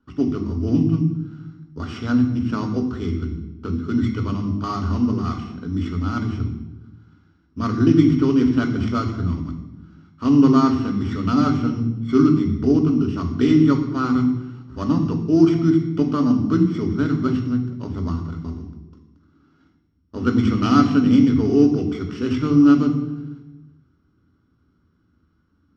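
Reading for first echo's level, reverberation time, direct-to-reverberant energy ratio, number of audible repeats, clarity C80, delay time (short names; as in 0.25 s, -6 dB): none, 1.1 s, 5.0 dB, none, 10.0 dB, none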